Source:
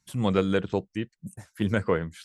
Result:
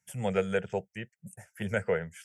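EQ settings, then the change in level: Bessel high-pass 150 Hz; dynamic EQ 6900 Hz, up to +4 dB, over -54 dBFS, Q 0.81; fixed phaser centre 1100 Hz, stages 6; 0.0 dB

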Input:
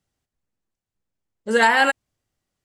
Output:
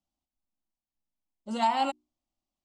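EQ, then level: air absorption 80 m; notches 60/120/180/240/300/360 Hz; fixed phaser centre 450 Hz, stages 6; -5.5 dB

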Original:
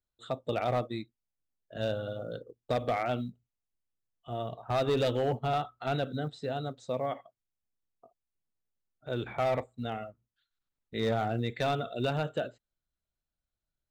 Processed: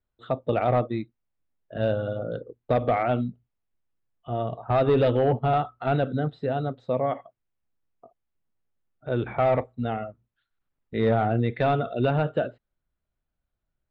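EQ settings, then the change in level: air absorption 440 m; +8.5 dB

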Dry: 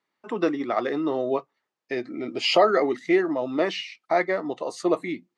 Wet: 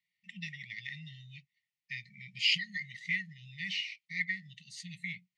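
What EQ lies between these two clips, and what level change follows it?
brick-wall FIR band-stop 190–1800 Hz; LPF 3200 Hz 6 dB/oct; low shelf 86 Hz -9.5 dB; 0.0 dB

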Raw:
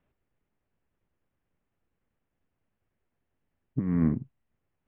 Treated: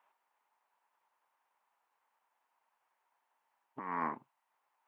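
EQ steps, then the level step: resonant high-pass 920 Hz, resonance Q 5.1; +3.0 dB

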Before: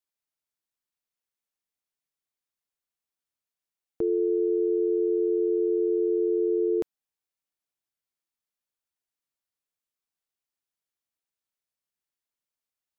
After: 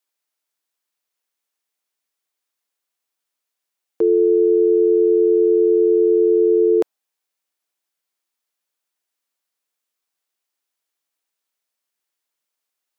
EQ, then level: dynamic EQ 680 Hz, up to +6 dB, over -39 dBFS, Q 0.86; Bessel high-pass 340 Hz, order 2; +9.0 dB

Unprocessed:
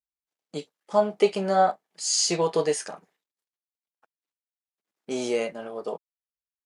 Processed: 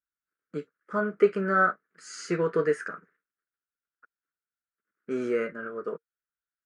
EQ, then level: EQ curve 460 Hz 0 dB, 820 Hz -20 dB, 1400 Hz +14 dB, 3400 Hz -19 dB; 0.0 dB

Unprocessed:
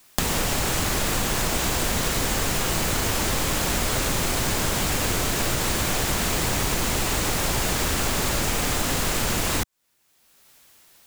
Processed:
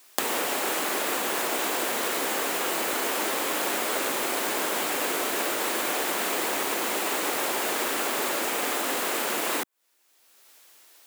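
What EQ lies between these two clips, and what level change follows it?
HPF 300 Hz 24 dB/oct; dynamic EQ 5700 Hz, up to -7 dB, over -44 dBFS, Q 0.9; 0.0 dB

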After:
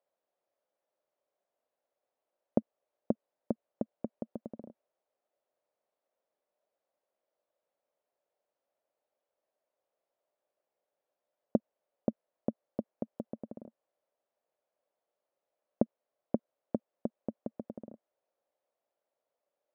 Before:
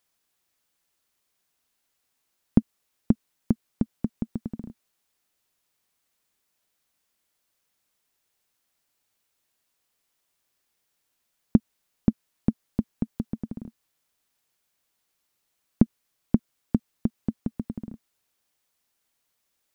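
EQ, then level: band-pass 580 Hz, Q 4.8; +9.0 dB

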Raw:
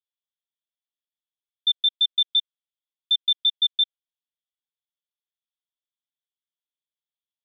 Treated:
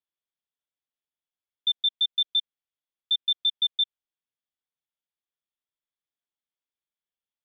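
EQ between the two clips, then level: LPF 3400 Hz; 0.0 dB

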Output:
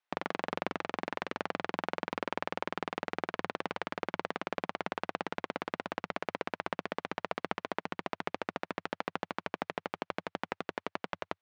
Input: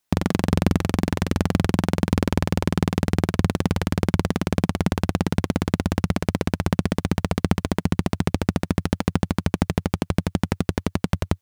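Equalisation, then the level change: BPF 590–2700 Hz; -4.5 dB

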